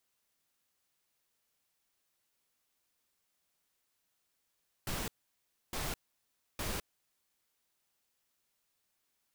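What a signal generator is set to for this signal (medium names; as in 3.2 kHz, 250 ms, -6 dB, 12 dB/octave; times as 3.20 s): noise bursts pink, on 0.21 s, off 0.65 s, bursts 3, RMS -37 dBFS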